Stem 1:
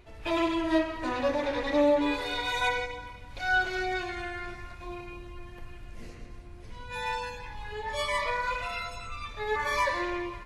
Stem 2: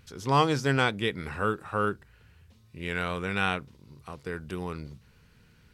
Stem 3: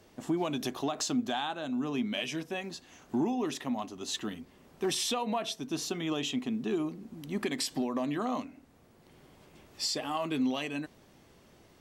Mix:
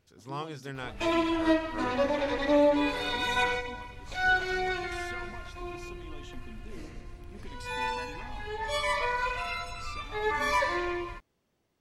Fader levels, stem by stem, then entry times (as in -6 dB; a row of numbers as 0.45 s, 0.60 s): +0.5 dB, -14.5 dB, -17.0 dB; 0.75 s, 0.00 s, 0.00 s